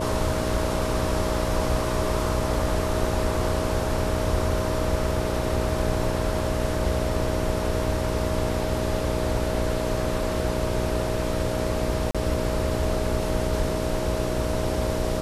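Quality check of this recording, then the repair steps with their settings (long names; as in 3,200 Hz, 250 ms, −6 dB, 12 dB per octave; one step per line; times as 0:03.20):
mains buzz 60 Hz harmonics 9 −29 dBFS
whistle 630 Hz −30 dBFS
0:12.11–0:12.15: drop-out 36 ms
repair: notch filter 630 Hz, Q 30
hum removal 60 Hz, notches 9
repair the gap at 0:12.11, 36 ms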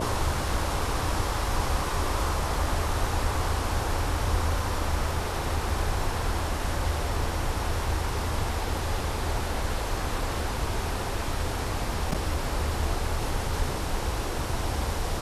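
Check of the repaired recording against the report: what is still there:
none of them is left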